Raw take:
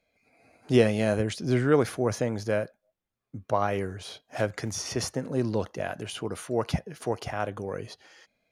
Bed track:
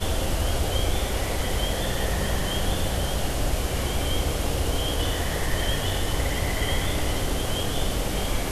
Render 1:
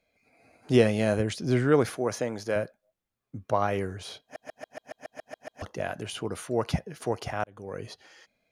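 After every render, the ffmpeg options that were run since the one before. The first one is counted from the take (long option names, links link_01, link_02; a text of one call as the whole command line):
ffmpeg -i in.wav -filter_complex "[0:a]asettb=1/sr,asplit=3[link_01][link_02][link_03];[link_01]atrim=end=1.904[link_04];[link_02]atrim=start=1.9:end=2.56,asetpts=PTS-STARTPTS,afade=type=in:duration=0.004:curve=qsin,afade=type=out:start_time=0.656:duration=0.004:curve=qsin,highpass=frequency=290:poles=1[link_05];[link_03]atrim=start=2.556[link_06];[link_04][link_05]acrossfade=duration=0.004:curve1=hsin:curve2=qsin[link_07];[link_07][link_06]acrossfade=duration=0.004:curve1=qsin:curve2=hsin,asplit=12[link_08][link_09][link_10][link_11][link_12][link_13][link_14][link_15][link_16][link_17][link_18][link_19];[link_08]atrim=end=4.362[link_20];[link_09]atrim=start=4.218:end=4.362[link_21];[link_10]atrim=start=4.218:end=4.362[link_22];[link_11]atrim=start=4.218:end=4.362[link_23];[link_12]atrim=start=4.218:end=4.362[link_24];[link_13]atrim=start=4.218:end=4.362[link_25];[link_14]atrim=start=4.218:end=4.362[link_26];[link_15]atrim=start=4.218:end=4.362[link_27];[link_16]atrim=start=4.218:end=4.362[link_28];[link_17]atrim=start=4.218:end=4.362[link_29];[link_18]atrim=start=5.618:end=7.44,asetpts=PTS-STARTPTS,afade=type=out:start_time=1.818:duration=0.004:curve=hsin[link_30];[link_19]atrim=start=7.44,asetpts=PTS-STARTPTS,afade=type=in:duration=0.42[link_31];[link_20][link_21]acrossfade=duration=0.004:curve1=hsin:curve2=hsin[link_32];[link_32][link_22]acrossfade=duration=0.004:curve1=hsin:curve2=hsin[link_33];[link_33][link_23]acrossfade=duration=0.004:curve1=hsin:curve2=hsin[link_34];[link_34][link_24]acrossfade=duration=0.004:curve1=hsin:curve2=hsin[link_35];[link_35][link_25]acrossfade=duration=0.004:curve1=hsin:curve2=hsin[link_36];[link_36][link_26]acrossfade=duration=0.004:curve1=hsin:curve2=hsin[link_37];[link_37][link_27]acrossfade=duration=0.004:curve1=hsin:curve2=hsin[link_38];[link_38][link_28]acrossfade=duration=0.004:curve1=hsin:curve2=hsin[link_39];[link_39][link_29]acrossfade=duration=0.004:curve1=hsin:curve2=hsin[link_40];[link_30][link_31]concat=n=2:v=0:a=1[link_41];[link_40][link_41]acrossfade=duration=0.004:curve1=hsin:curve2=hsin" out.wav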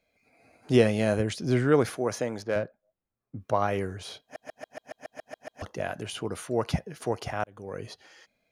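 ffmpeg -i in.wav -filter_complex "[0:a]asettb=1/sr,asplit=3[link_01][link_02][link_03];[link_01]atrim=end=2.424[link_04];[link_02]atrim=start=2.42:end=3.4,asetpts=PTS-STARTPTS,afade=type=in:duration=0.004:curve=qsin,afade=type=out:start_time=0.976:duration=0.004:curve=qsin,adynamicsmooth=sensitivity=4.5:basefreq=1900[link_05];[link_03]atrim=start=3.396[link_06];[link_04][link_05]acrossfade=duration=0.004:curve1=hsin:curve2=qsin[link_07];[link_07][link_06]acrossfade=duration=0.004:curve1=qsin:curve2=hsin" out.wav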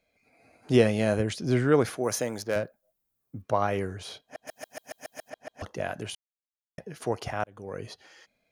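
ffmpeg -i in.wav -filter_complex "[0:a]asettb=1/sr,asplit=3[link_01][link_02][link_03];[link_01]atrim=end=2.034[link_04];[link_02]atrim=start=2.03:end=3.42,asetpts=PTS-STARTPTS,afade=type=in:duration=0.004:curve=qsin,afade=type=out:start_time=1.386:duration=0.004:curve=qsin,aemphasis=mode=production:type=50fm[link_05];[link_03]atrim=start=3.416[link_06];[link_04][link_05]acrossfade=duration=0.004:curve1=hsin:curve2=qsin[link_07];[link_07][link_06]acrossfade=duration=0.004:curve1=qsin:curve2=hsin,asettb=1/sr,asplit=3[link_08][link_09][link_10];[link_08]atrim=end=4.474[link_11];[link_09]atrim=start=4.47:end=5.3,asetpts=PTS-STARTPTS,afade=type=in:duration=0.004:curve=qsin,afade=type=out:start_time=0.826:duration=0.004:curve=qsin,aemphasis=mode=production:type=75fm[link_12];[link_10]atrim=start=5.296[link_13];[link_11][link_12]acrossfade=duration=0.004:curve1=hsin:curve2=qsin[link_14];[link_14][link_13]acrossfade=duration=0.004:curve1=qsin:curve2=hsin,asplit=3[link_15][link_16][link_17];[link_15]atrim=end=6.15,asetpts=PTS-STARTPTS,afade=type=out:start_time=6.146:duration=0.004:curve=hsin[link_18];[link_16]atrim=start=6.15:end=6.78,asetpts=PTS-STARTPTS,volume=0[link_19];[link_17]atrim=start=6.78,asetpts=PTS-STARTPTS,afade=type=in:duration=0.004:curve=hsin[link_20];[link_18][link_19][link_20]concat=n=3:v=0:a=1" out.wav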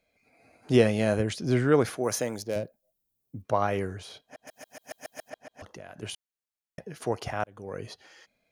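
ffmpeg -i in.wav -filter_complex "[0:a]asettb=1/sr,asplit=3[link_01][link_02][link_03];[link_01]atrim=end=2.364[link_04];[link_02]atrim=start=2.36:end=3.45,asetpts=PTS-STARTPTS,afade=type=in:duration=0.004:curve=qsin,afade=type=out:start_time=1.086:duration=0.004:curve=qsin,equalizer=frequency=1400:width=1.1:gain=-13[link_05];[link_03]atrim=start=3.446[link_06];[link_04][link_05]acrossfade=duration=0.004:curve1=hsin:curve2=qsin[link_07];[link_07][link_06]acrossfade=duration=0.004:curve1=qsin:curve2=hsin,asettb=1/sr,asplit=3[link_08][link_09][link_10];[link_08]atrim=end=3.994[link_11];[link_09]atrim=start=3.99:end=4.82,asetpts=PTS-STARTPTS,afade=type=in:duration=0.004:curve=qsin,afade=type=out:start_time=0.826:duration=0.004:curve=qsin,acompressor=threshold=-41dB:ratio=6:attack=3.2:release=140:knee=1:detection=peak[link_12];[link_10]atrim=start=4.816[link_13];[link_11][link_12]acrossfade=duration=0.004:curve1=hsin:curve2=qsin[link_14];[link_14][link_13]acrossfade=duration=0.004:curve1=qsin:curve2=hsin,asettb=1/sr,asplit=3[link_15][link_16][link_17];[link_15]atrim=end=5.414[link_18];[link_16]atrim=start=5.41:end=6.03,asetpts=PTS-STARTPTS,afade=type=in:duration=0.004:curve=qsin,afade=type=out:start_time=0.616:duration=0.004:curve=qsin,acompressor=threshold=-41dB:ratio=5:attack=3.2:release=140:knee=1:detection=peak[link_19];[link_17]atrim=start=6.026[link_20];[link_18][link_19]acrossfade=duration=0.004:curve1=hsin:curve2=qsin[link_21];[link_21][link_20]acrossfade=duration=0.004:curve1=qsin:curve2=hsin" out.wav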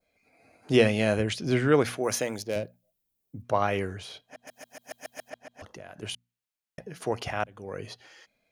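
ffmpeg -i in.wav -af "bandreject=frequency=60:width_type=h:width=6,bandreject=frequency=120:width_type=h:width=6,bandreject=frequency=180:width_type=h:width=6,bandreject=frequency=240:width_type=h:width=6,adynamicequalizer=threshold=0.00398:dfrequency=2700:dqfactor=1.2:tfrequency=2700:tqfactor=1.2:attack=5:release=100:ratio=0.375:range=3:mode=boostabove:tftype=bell" out.wav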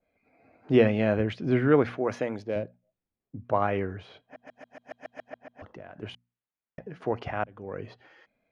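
ffmpeg -i in.wav -af "lowpass=2000,equalizer=frequency=270:width=2.2:gain=2.5" out.wav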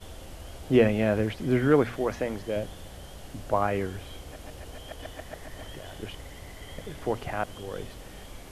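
ffmpeg -i in.wav -i bed.wav -filter_complex "[1:a]volume=-18dB[link_01];[0:a][link_01]amix=inputs=2:normalize=0" out.wav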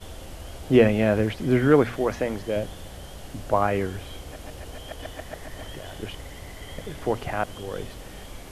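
ffmpeg -i in.wav -af "volume=3.5dB" out.wav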